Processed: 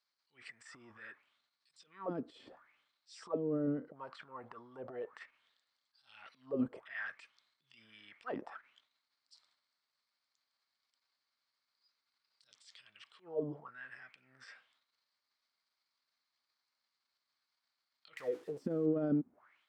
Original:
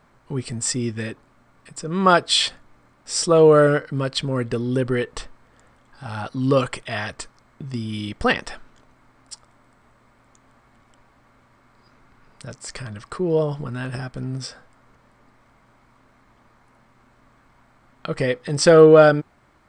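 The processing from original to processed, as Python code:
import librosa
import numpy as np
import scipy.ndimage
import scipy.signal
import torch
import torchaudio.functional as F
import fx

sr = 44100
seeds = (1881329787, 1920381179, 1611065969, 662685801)

y = fx.crossing_spikes(x, sr, level_db=-10.0, at=(18.17, 18.86))
y = fx.transient(y, sr, attack_db=-10, sustain_db=9)
y = fx.auto_wah(y, sr, base_hz=250.0, top_hz=4700.0, q=5.2, full_db=-15.0, direction='down')
y = F.gain(torch.from_numpy(y), -7.5).numpy()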